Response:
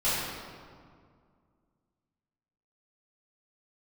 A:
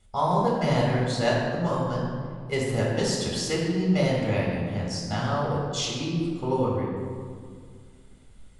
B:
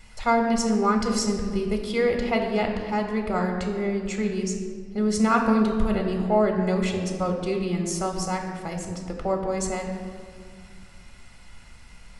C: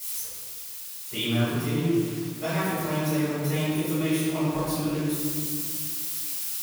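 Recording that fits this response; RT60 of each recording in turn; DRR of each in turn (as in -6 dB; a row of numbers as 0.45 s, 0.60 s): C; 2.1 s, 2.1 s, 2.1 s; -4.0 dB, 3.0 dB, -13.0 dB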